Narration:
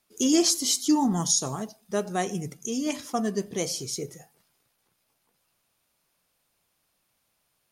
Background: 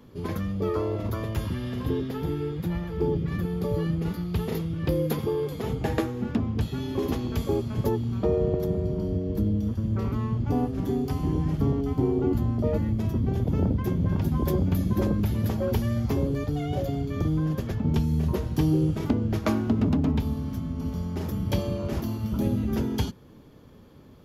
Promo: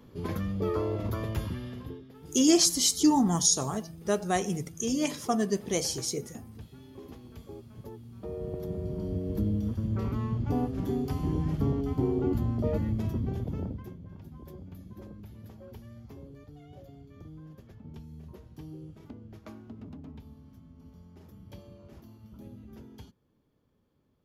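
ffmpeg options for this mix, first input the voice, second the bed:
-filter_complex "[0:a]adelay=2150,volume=1[s0];[1:a]volume=4.47,afade=t=out:st=1.32:d=0.68:silence=0.149624,afade=t=in:st=8.13:d=1.22:silence=0.16788,afade=t=out:st=12.98:d=1.01:silence=0.125893[s1];[s0][s1]amix=inputs=2:normalize=0"

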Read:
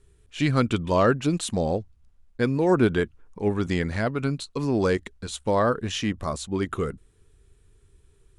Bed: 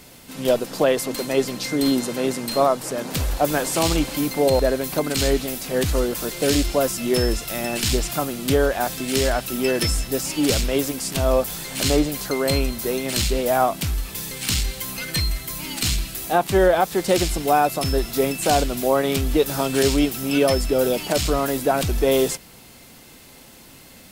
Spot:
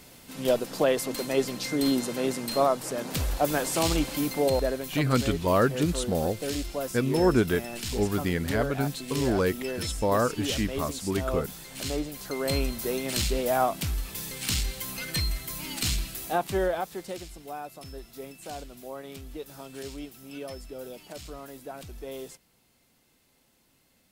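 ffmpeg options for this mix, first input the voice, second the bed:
-filter_complex "[0:a]adelay=4550,volume=0.75[s0];[1:a]volume=1.19,afade=t=out:st=4.3:d=0.75:silence=0.446684,afade=t=in:st=12.16:d=0.46:silence=0.473151,afade=t=out:st=16.04:d=1.17:silence=0.177828[s1];[s0][s1]amix=inputs=2:normalize=0"

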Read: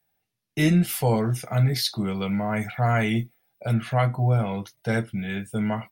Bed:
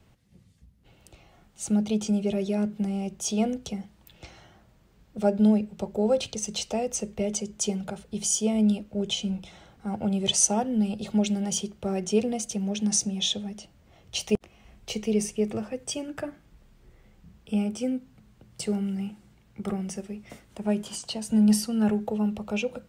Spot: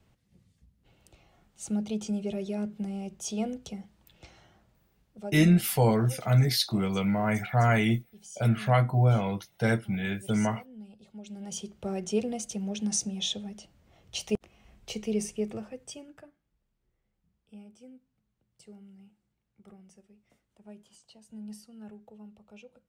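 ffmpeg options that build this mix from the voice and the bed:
-filter_complex "[0:a]adelay=4750,volume=0.891[s0];[1:a]volume=3.55,afade=t=out:st=4.57:d=0.91:silence=0.16788,afade=t=in:st=11.23:d=0.6:silence=0.141254,afade=t=out:st=15.33:d=1:silence=0.125893[s1];[s0][s1]amix=inputs=2:normalize=0"

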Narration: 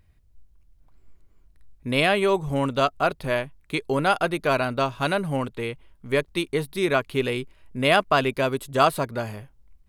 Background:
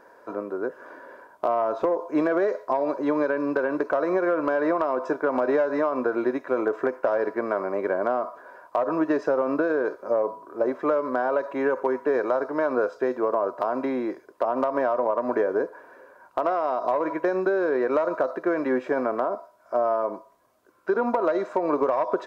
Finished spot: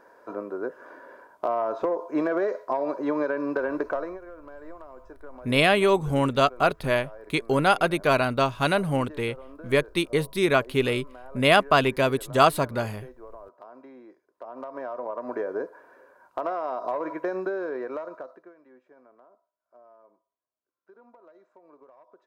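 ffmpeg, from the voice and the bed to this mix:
-filter_complex "[0:a]adelay=3600,volume=1.12[s0];[1:a]volume=4.73,afade=t=out:st=3.87:d=0.32:silence=0.11885,afade=t=in:st=14.26:d=1.48:silence=0.158489,afade=t=out:st=17.35:d=1.19:silence=0.0501187[s1];[s0][s1]amix=inputs=2:normalize=0"

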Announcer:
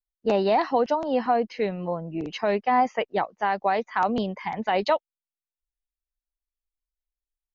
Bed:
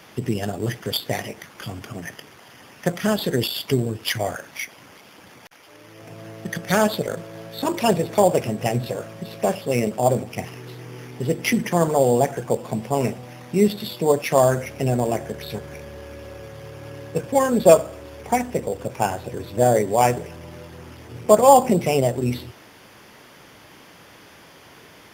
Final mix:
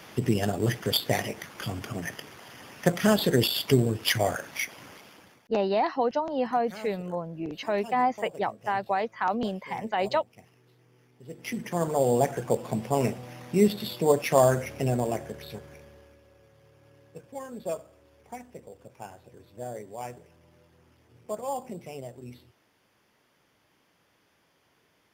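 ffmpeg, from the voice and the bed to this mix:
-filter_complex "[0:a]adelay=5250,volume=0.668[s0];[1:a]volume=10,afade=t=out:st=4.87:d=0.62:silence=0.0668344,afade=t=in:st=11.23:d=1.14:silence=0.0944061,afade=t=out:st=14.6:d=1.61:silence=0.141254[s1];[s0][s1]amix=inputs=2:normalize=0"

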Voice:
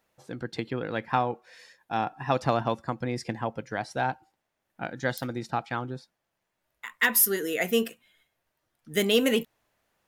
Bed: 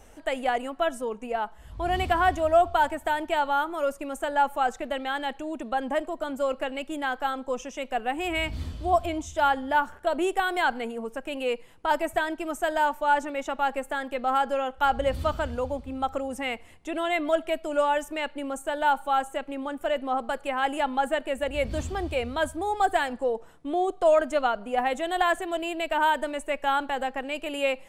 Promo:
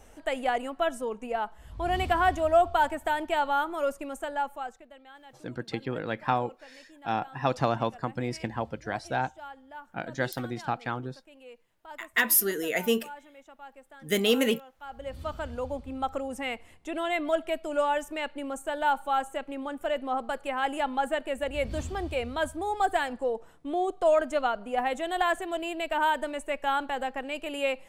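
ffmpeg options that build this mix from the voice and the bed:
-filter_complex "[0:a]adelay=5150,volume=0.891[s0];[1:a]volume=7.08,afade=t=out:st=3.89:d=0.97:silence=0.105925,afade=t=in:st=14.85:d=0.95:silence=0.11885[s1];[s0][s1]amix=inputs=2:normalize=0"

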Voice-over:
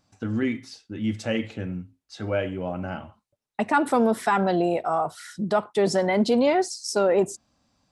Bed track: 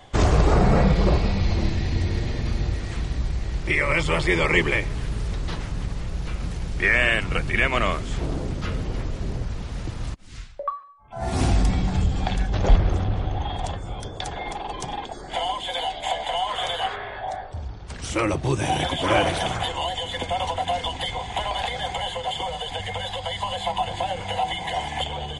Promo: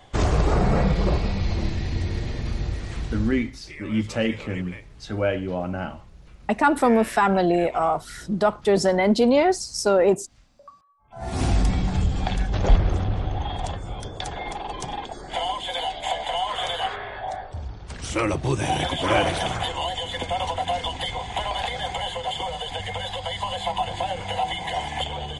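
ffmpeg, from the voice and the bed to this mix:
-filter_complex "[0:a]adelay=2900,volume=1.33[s0];[1:a]volume=6.31,afade=t=out:st=3.18:d=0.35:silence=0.149624,afade=t=in:st=10.79:d=0.78:silence=0.11885[s1];[s0][s1]amix=inputs=2:normalize=0"

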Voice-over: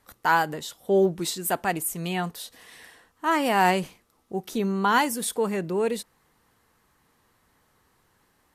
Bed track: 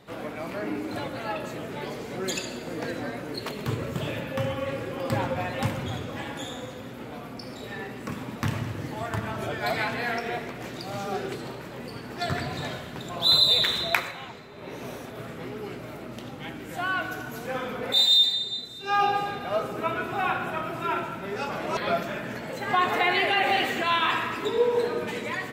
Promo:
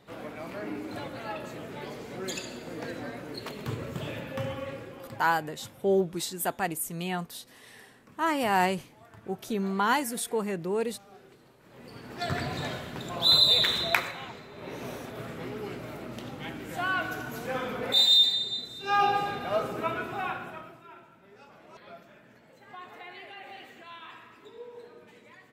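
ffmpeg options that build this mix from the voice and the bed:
-filter_complex "[0:a]adelay=4950,volume=0.631[s0];[1:a]volume=6.31,afade=t=out:st=4.53:d=0.7:silence=0.141254,afade=t=in:st=11.6:d=0.84:silence=0.0891251,afade=t=out:st=19.68:d=1.15:silence=0.0891251[s1];[s0][s1]amix=inputs=2:normalize=0"

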